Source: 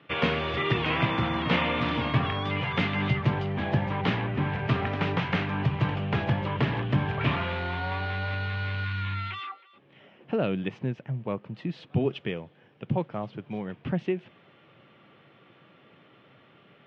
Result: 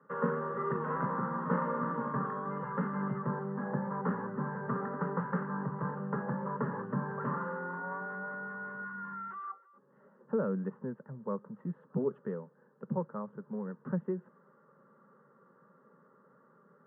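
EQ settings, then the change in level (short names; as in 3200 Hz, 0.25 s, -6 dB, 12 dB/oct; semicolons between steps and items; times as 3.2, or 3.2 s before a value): HPF 160 Hz 24 dB/oct; steep low-pass 1700 Hz 36 dB/oct; fixed phaser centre 470 Hz, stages 8; -2.5 dB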